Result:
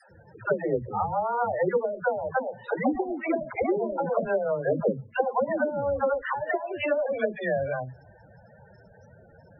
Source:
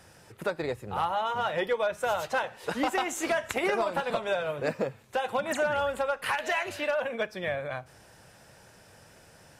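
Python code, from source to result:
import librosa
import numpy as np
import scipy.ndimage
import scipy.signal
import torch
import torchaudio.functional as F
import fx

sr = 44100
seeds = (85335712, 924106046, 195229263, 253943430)

y = fx.dispersion(x, sr, late='lows', ms=114.0, hz=370.0)
y = fx.env_lowpass_down(y, sr, base_hz=370.0, full_db=-23.0)
y = fx.spec_topn(y, sr, count=16)
y = y * librosa.db_to_amplitude(6.0)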